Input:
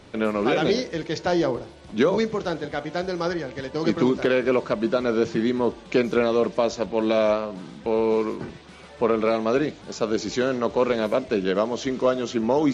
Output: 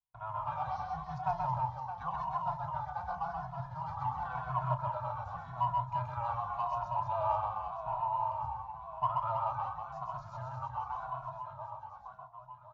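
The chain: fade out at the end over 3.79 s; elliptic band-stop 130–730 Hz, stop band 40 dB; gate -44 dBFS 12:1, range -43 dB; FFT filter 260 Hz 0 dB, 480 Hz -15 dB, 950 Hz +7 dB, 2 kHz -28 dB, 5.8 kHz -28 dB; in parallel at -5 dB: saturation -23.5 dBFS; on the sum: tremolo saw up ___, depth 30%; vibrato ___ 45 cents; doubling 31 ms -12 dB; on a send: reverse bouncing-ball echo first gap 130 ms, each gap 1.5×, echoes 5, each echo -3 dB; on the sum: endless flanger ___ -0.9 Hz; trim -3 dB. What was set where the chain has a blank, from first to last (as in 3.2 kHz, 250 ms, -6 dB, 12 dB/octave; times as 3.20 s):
0.63 Hz, 8 Hz, 2.3 ms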